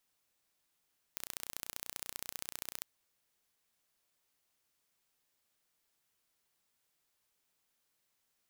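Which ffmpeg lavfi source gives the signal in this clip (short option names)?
-f lavfi -i "aevalsrc='0.266*eq(mod(n,1455),0)*(0.5+0.5*eq(mod(n,2910),0))':d=1.67:s=44100"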